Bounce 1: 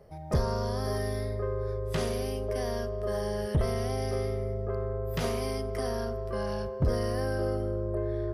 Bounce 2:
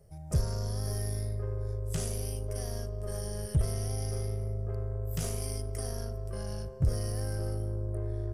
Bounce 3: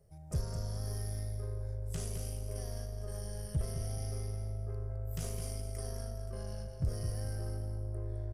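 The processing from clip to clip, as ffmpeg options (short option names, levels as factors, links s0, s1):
-af "aeval=exprs='0.112*(cos(1*acos(clip(val(0)/0.112,-1,1)))-cos(1*PI/2))+0.01*(cos(4*acos(clip(val(0)/0.112,-1,1)))-cos(4*PI/2))':c=same,equalizer=f=125:t=o:w=1:g=3,equalizer=f=250:t=o:w=1:g=-9,equalizer=f=500:t=o:w=1:g=-6,equalizer=f=1000:t=o:w=1:g=-12,equalizer=f=2000:t=o:w=1:g=-7,equalizer=f=4000:t=o:w=1:g=-9,equalizer=f=8000:t=o:w=1:g=11"
-af "aecho=1:1:211|422|633|844:0.422|0.122|0.0355|0.0103,volume=0.473"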